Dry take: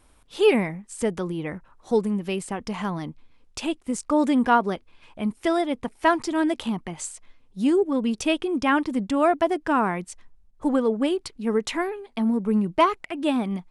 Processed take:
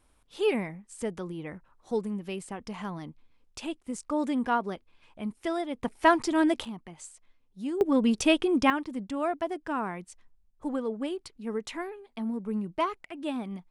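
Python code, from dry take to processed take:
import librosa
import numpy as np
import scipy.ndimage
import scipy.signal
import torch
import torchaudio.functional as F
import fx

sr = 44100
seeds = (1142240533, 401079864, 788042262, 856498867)

y = fx.gain(x, sr, db=fx.steps((0.0, -8.0), (5.83, -1.0), (6.65, -12.0), (7.81, 0.5), (8.7, -9.5)))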